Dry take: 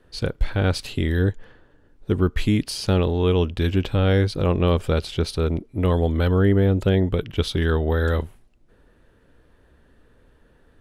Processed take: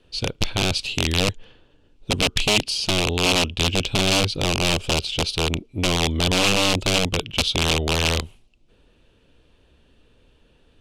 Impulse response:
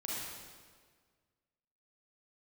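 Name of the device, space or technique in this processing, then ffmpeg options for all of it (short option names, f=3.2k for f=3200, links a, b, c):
overflowing digital effects unit: -af "aeval=exprs='(mod(4.73*val(0)+1,2)-1)/4.73':c=same,lowpass=8k,highshelf=f=2.2k:t=q:w=3:g=6,volume=-1.5dB"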